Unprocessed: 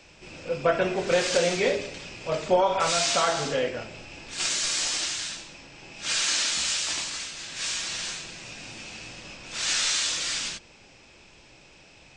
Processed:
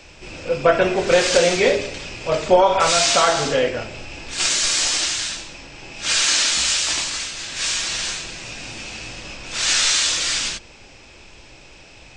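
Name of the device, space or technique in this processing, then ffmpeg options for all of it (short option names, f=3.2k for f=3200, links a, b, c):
low shelf boost with a cut just above: -af "lowshelf=f=72:g=7.5,equalizer=f=170:t=o:w=0.69:g=-4,volume=7.5dB"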